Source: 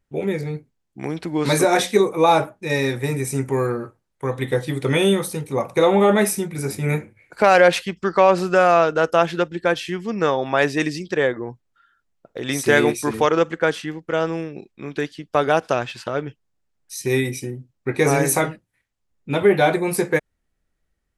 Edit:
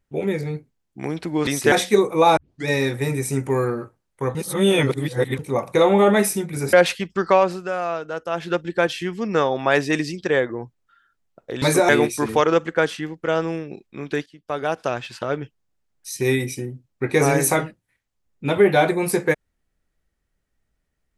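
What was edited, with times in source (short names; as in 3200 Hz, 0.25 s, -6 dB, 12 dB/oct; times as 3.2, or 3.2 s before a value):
1.47–1.74 swap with 12.49–12.74
2.39 tape start 0.30 s
4.37–5.41 reverse
6.75–7.6 cut
8.17–9.48 dip -10.5 dB, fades 0.31 s
15.11–16.15 fade in, from -15 dB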